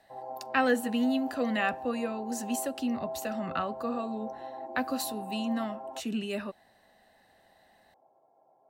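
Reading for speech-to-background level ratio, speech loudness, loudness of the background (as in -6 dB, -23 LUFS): 9.0 dB, -32.0 LUFS, -41.0 LUFS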